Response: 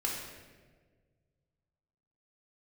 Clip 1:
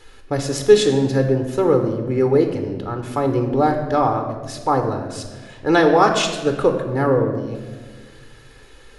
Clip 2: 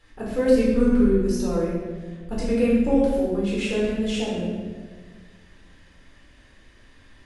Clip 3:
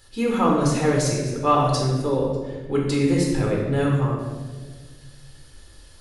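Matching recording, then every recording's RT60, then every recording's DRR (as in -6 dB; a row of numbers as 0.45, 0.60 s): 3; 1.6, 1.5, 1.5 s; 4.5, -7.0, -2.5 dB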